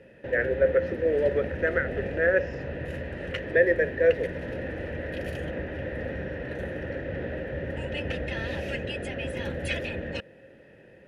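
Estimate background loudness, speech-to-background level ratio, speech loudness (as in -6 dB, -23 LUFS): -33.5 LUFS, 8.0 dB, -25.5 LUFS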